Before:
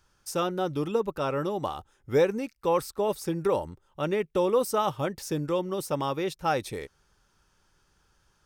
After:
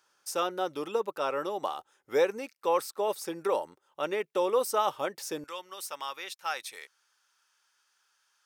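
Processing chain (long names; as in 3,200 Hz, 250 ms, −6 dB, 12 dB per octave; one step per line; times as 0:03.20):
high-pass filter 460 Hz 12 dB per octave, from 0:05.44 1,300 Hz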